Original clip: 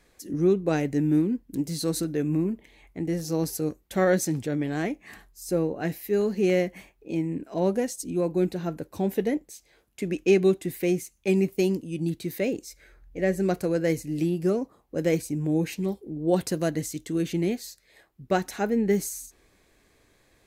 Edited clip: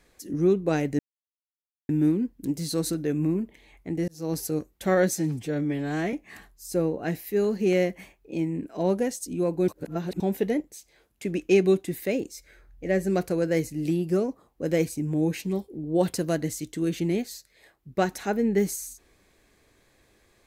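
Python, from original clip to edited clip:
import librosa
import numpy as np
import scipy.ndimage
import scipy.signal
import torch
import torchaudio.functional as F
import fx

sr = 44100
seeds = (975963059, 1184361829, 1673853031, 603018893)

y = fx.edit(x, sr, fx.insert_silence(at_s=0.99, length_s=0.9),
    fx.fade_in_span(start_s=3.18, length_s=0.3),
    fx.stretch_span(start_s=4.24, length_s=0.66, factor=1.5),
    fx.reverse_span(start_s=8.45, length_s=0.52),
    fx.cut(start_s=10.79, length_s=1.56), tone=tone)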